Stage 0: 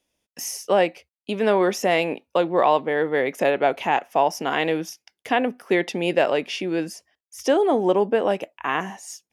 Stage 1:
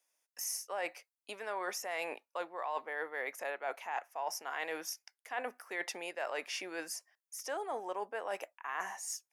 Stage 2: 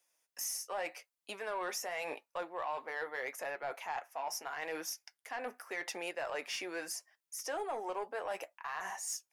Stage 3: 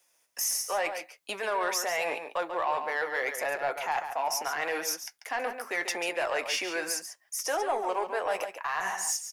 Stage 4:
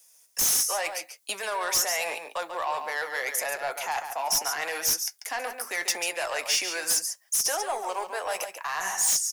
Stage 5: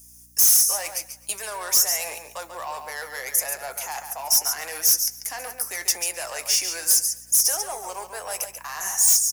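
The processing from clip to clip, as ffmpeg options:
ffmpeg -i in.wav -af "highpass=1100,equalizer=frequency=3200:width=1.3:gain=-12.5,areverse,acompressor=threshold=-36dB:ratio=6,areverse,volume=1dB" out.wav
ffmpeg -i in.wav -af "alimiter=level_in=5dB:limit=-24dB:level=0:latency=1:release=72,volume=-5dB,asoftclip=type=tanh:threshold=-32dB,flanger=delay=5.7:depth=2.2:regen=-55:speed=0.82:shape=sinusoidal,volume=6.5dB" out.wav
ffmpeg -i in.wav -filter_complex "[0:a]acrossover=split=390|2200[link_01][link_02][link_03];[link_01]alimiter=level_in=26.5dB:limit=-24dB:level=0:latency=1,volume=-26.5dB[link_04];[link_04][link_02][link_03]amix=inputs=3:normalize=0,asplit=2[link_05][link_06];[link_06]adelay=139.9,volume=-8dB,highshelf=frequency=4000:gain=-3.15[link_07];[link_05][link_07]amix=inputs=2:normalize=0,volume=9dB" out.wav
ffmpeg -i in.wav -filter_complex "[0:a]acrossover=split=140|480|4700[link_01][link_02][link_03][link_04];[link_02]acompressor=threshold=-48dB:ratio=6[link_05];[link_04]aeval=exprs='0.1*sin(PI/2*2.82*val(0)/0.1)':channel_layout=same[link_06];[link_01][link_05][link_03][link_06]amix=inputs=4:normalize=0" out.wav
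ffmpeg -i in.wav -af "aexciter=amount=2.9:drive=6.9:freq=5100,aeval=exprs='val(0)+0.00224*(sin(2*PI*60*n/s)+sin(2*PI*2*60*n/s)/2+sin(2*PI*3*60*n/s)/3+sin(2*PI*4*60*n/s)/4+sin(2*PI*5*60*n/s)/5)':channel_layout=same,aecho=1:1:128|256|384|512:0.0708|0.0425|0.0255|0.0153,volume=-3.5dB" out.wav

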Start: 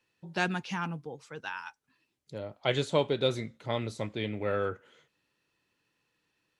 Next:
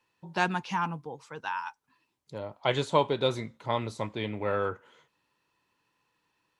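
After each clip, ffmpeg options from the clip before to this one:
ffmpeg -i in.wav -af "equalizer=frequency=970:width=2.7:gain=10.5" out.wav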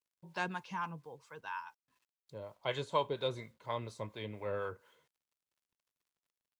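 ffmpeg -i in.wav -filter_complex "[0:a]aecho=1:1:1.9:0.32,acrusher=bits=10:mix=0:aa=0.000001,acrossover=split=600[link_01][link_02];[link_01]aeval=exprs='val(0)*(1-0.5/2+0.5/2*cos(2*PI*4.2*n/s))':channel_layout=same[link_03];[link_02]aeval=exprs='val(0)*(1-0.5/2-0.5/2*cos(2*PI*4.2*n/s))':channel_layout=same[link_04];[link_03][link_04]amix=inputs=2:normalize=0,volume=-7.5dB" out.wav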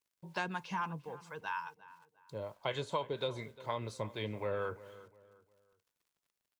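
ffmpeg -i in.wav -filter_complex "[0:a]acompressor=threshold=-37dB:ratio=4,asplit=2[link_01][link_02];[link_02]adelay=353,lowpass=frequency=2500:poles=1,volume=-17.5dB,asplit=2[link_03][link_04];[link_04]adelay=353,lowpass=frequency=2500:poles=1,volume=0.35,asplit=2[link_05][link_06];[link_06]adelay=353,lowpass=frequency=2500:poles=1,volume=0.35[link_07];[link_01][link_03][link_05][link_07]amix=inputs=4:normalize=0,volume=4.5dB" out.wav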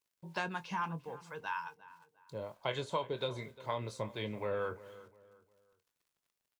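ffmpeg -i in.wav -filter_complex "[0:a]asplit=2[link_01][link_02];[link_02]adelay=24,volume=-12dB[link_03];[link_01][link_03]amix=inputs=2:normalize=0" out.wav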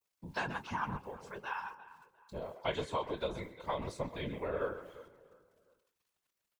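ffmpeg -i in.wav -filter_complex "[0:a]asplit=2[link_01][link_02];[link_02]adelay=130,highpass=300,lowpass=3400,asoftclip=type=hard:threshold=-29.5dB,volume=-10dB[link_03];[link_01][link_03]amix=inputs=2:normalize=0,adynamicequalizer=threshold=0.00158:dfrequency=4000:dqfactor=0.74:tfrequency=4000:tqfactor=0.74:attack=5:release=100:ratio=0.375:range=2:mode=cutabove:tftype=bell,afftfilt=real='hypot(re,im)*cos(2*PI*random(0))':imag='hypot(re,im)*sin(2*PI*random(1))':win_size=512:overlap=0.75,volume=6dB" out.wav

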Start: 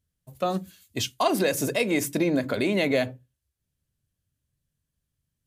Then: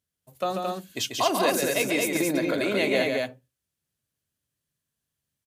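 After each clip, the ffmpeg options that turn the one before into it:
ffmpeg -i in.wav -filter_complex "[0:a]highpass=frequency=360:poles=1,asplit=2[link_01][link_02];[link_02]aecho=0:1:139.9|221.6:0.562|0.708[link_03];[link_01][link_03]amix=inputs=2:normalize=0" out.wav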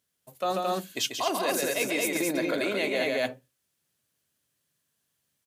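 ffmpeg -i in.wav -af "highpass=frequency=260:poles=1,areverse,acompressor=threshold=-32dB:ratio=6,areverse,volume=7dB" out.wav

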